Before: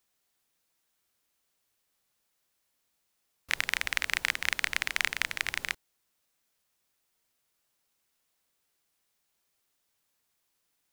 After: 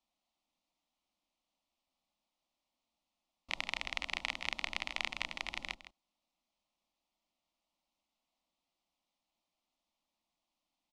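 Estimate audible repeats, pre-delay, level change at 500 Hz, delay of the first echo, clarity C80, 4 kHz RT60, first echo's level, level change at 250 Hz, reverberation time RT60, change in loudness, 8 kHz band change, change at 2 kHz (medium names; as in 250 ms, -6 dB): 1, no reverb, -3.0 dB, 160 ms, no reverb, no reverb, -13.5 dB, -1.5 dB, no reverb, -8.5 dB, -14.0 dB, -10.0 dB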